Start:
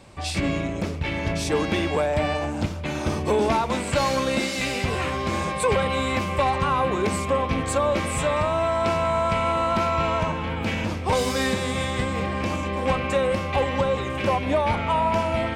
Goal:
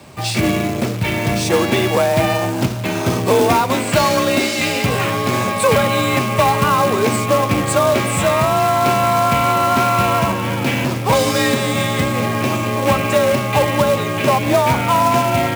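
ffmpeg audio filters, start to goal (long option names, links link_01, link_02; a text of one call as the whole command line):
ffmpeg -i in.wav -af "acontrast=40,acrusher=bits=3:mode=log:mix=0:aa=0.000001,afreqshift=34,volume=2dB" out.wav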